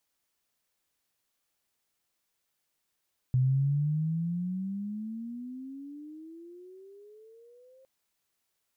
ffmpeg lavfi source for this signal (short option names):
-f lavfi -i "aevalsrc='pow(10,(-21-34*t/4.51)/20)*sin(2*PI*126*4.51/(25*log(2)/12)*(exp(25*log(2)/12*t/4.51)-1))':d=4.51:s=44100"